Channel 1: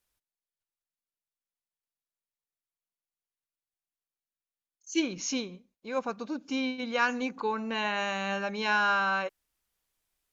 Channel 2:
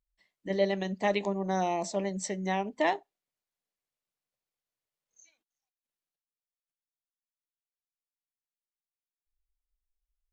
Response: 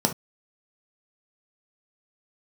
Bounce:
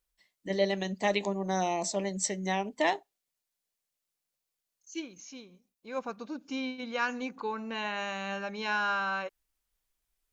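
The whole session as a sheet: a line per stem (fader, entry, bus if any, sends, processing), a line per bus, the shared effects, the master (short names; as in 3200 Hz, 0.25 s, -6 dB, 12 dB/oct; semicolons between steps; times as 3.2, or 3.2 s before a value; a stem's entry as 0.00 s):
-4.0 dB, 0.00 s, no send, auto duck -12 dB, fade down 0.35 s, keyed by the second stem
-1.0 dB, 0.00 s, no send, high shelf 3400 Hz +9 dB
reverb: off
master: dry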